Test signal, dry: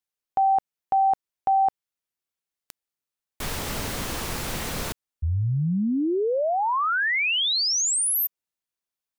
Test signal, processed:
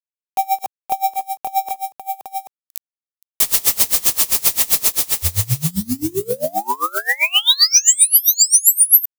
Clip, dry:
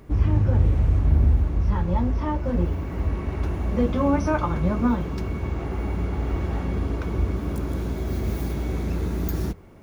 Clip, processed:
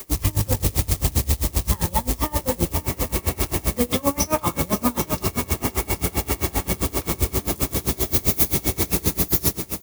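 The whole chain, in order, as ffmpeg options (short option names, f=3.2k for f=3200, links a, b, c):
-filter_complex "[0:a]acrusher=bits=7:mode=log:mix=0:aa=0.000001,bass=f=250:g=-9,treble=f=4k:g=3,bandreject=f=1.5k:w=6.6,asoftclip=type=tanh:threshold=-12.5dB,asplit=2[a][b];[b]aecho=0:1:58|74|524|785:0.224|0.251|0.237|0.2[c];[a][c]amix=inputs=2:normalize=0,acompressor=threshold=-31dB:ratio=2.5:attack=0.31:release=56:knee=6:detection=rms,acrusher=bits=9:mix=0:aa=0.000001,adynamicequalizer=threshold=0.00355:dfrequency=110:dqfactor=1.1:tfrequency=110:tqfactor=1.1:attack=5:release=100:ratio=0.375:range=3:mode=boostabove:tftype=bell,crystalizer=i=4.5:c=0,alimiter=level_in=13.5dB:limit=-1dB:release=50:level=0:latency=1,aeval=exprs='val(0)*pow(10,-26*(0.5-0.5*cos(2*PI*7.6*n/s))/20)':c=same"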